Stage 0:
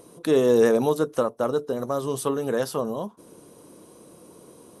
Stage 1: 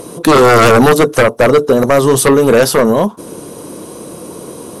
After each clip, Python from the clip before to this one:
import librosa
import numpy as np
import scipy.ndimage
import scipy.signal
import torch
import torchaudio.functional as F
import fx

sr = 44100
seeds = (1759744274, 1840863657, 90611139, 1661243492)

y = fx.fold_sine(x, sr, drive_db=11, ceiling_db=-8.5)
y = F.gain(torch.from_numpy(y), 5.0).numpy()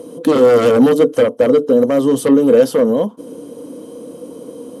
y = scipy.signal.sosfilt(scipy.signal.butter(2, 69.0, 'highpass', fs=sr, output='sos'), x)
y = fx.small_body(y, sr, hz=(270.0, 480.0, 3100.0), ring_ms=50, db=17)
y = F.gain(torch.from_numpy(y), -14.0).numpy()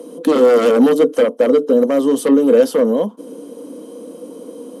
y = scipy.signal.sosfilt(scipy.signal.butter(6, 180.0, 'highpass', fs=sr, output='sos'), x)
y = F.gain(torch.from_numpy(y), -1.0).numpy()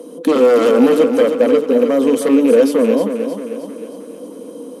y = fx.rattle_buzz(x, sr, strikes_db=-19.0, level_db=-22.0)
y = fx.echo_feedback(y, sr, ms=312, feedback_pct=52, wet_db=-8.0)